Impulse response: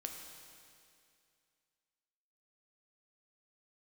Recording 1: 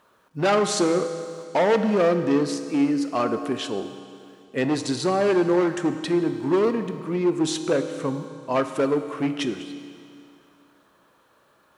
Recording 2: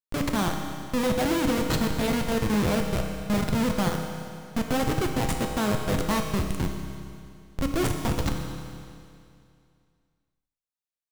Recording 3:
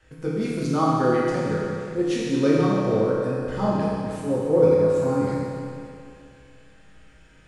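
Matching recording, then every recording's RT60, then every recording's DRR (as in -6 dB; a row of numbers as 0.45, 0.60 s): 2; 2.4, 2.4, 2.4 s; 8.0, 2.5, -7.0 dB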